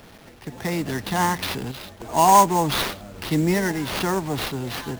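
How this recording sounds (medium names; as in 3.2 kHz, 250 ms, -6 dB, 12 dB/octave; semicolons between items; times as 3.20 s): a quantiser's noise floor 8-bit, dither none; random-step tremolo; aliases and images of a low sample rate 7.6 kHz, jitter 20%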